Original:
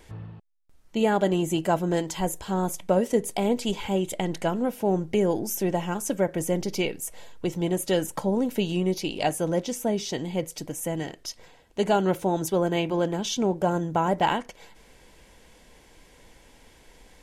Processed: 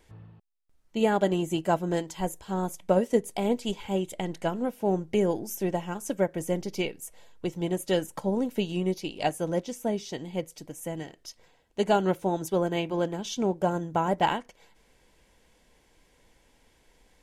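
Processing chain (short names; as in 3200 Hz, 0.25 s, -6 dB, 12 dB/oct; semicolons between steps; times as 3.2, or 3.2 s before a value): upward expander 1.5:1, over -36 dBFS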